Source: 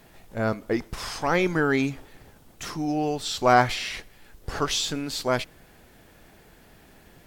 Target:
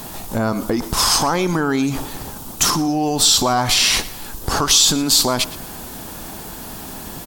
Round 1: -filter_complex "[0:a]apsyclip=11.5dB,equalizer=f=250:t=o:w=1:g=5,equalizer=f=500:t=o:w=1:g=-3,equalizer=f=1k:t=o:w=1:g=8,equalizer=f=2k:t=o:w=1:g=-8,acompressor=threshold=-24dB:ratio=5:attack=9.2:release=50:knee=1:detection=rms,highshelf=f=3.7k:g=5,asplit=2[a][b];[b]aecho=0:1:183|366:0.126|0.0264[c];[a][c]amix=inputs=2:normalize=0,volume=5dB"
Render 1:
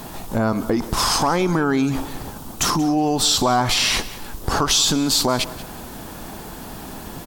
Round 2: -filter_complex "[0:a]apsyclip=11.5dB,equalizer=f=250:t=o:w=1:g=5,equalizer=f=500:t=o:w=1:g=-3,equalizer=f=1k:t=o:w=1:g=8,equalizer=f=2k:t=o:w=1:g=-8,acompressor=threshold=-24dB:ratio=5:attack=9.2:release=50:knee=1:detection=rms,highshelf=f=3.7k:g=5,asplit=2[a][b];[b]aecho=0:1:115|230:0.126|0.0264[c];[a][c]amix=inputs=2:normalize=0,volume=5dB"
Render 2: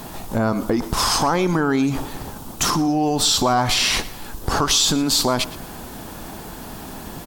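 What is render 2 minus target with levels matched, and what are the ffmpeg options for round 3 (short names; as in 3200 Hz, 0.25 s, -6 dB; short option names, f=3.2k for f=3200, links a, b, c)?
8000 Hz band -2.5 dB
-filter_complex "[0:a]apsyclip=11.5dB,equalizer=f=250:t=o:w=1:g=5,equalizer=f=500:t=o:w=1:g=-3,equalizer=f=1k:t=o:w=1:g=8,equalizer=f=2k:t=o:w=1:g=-8,acompressor=threshold=-24dB:ratio=5:attack=9.2:release=50:knee=1:detection=rms,highshelf=f=3.7k:g=12,asplit=2[a][b];[b]aecho=0:1:115|230:0.126|0.0264[c];[a][c]amix=inputs=2:normalize=0,volume=5dB"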